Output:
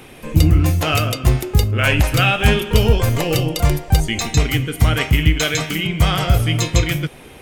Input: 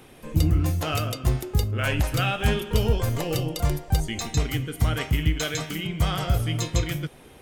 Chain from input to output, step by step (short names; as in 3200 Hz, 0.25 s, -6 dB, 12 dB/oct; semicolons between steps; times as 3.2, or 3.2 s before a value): bell 2400 Hz +4.5 dB 0.62 oct; gain +8 dB